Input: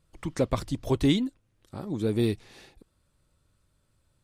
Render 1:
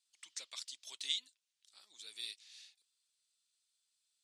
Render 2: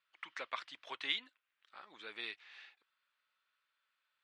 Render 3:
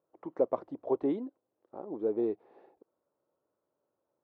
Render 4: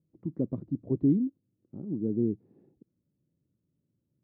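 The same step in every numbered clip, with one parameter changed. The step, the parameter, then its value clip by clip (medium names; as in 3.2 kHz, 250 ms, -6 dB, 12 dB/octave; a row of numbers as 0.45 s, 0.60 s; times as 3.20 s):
Butterworth band-pass, frequency: 5.5 kHz, 2.1 kHz, 570 Hz, 220 Hz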